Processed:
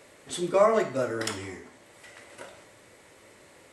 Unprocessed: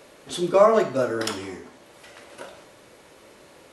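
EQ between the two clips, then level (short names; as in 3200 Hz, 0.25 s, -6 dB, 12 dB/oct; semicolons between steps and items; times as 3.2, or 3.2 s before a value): thirty-one-band EQ 100 Hz +8 dB, 2000 Hz +7 dB, 8000 Hz +8 dB; -5.0 dB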